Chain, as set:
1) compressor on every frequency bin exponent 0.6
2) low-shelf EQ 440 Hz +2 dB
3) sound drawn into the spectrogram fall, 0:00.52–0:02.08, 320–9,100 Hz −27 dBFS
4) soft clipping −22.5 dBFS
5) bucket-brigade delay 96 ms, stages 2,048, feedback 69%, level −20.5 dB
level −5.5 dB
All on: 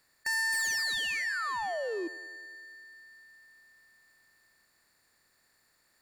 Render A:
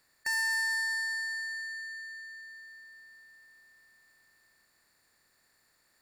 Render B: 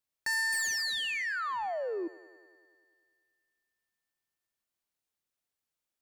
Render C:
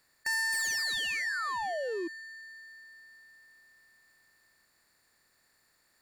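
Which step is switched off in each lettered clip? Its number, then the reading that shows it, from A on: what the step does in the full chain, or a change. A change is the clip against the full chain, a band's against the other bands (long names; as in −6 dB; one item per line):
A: 3, 1 kHz band −5.5 dB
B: 1, 2 kHz band −2.0 dB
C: 5, echo-to-direct ratio −18.0 dB to none audible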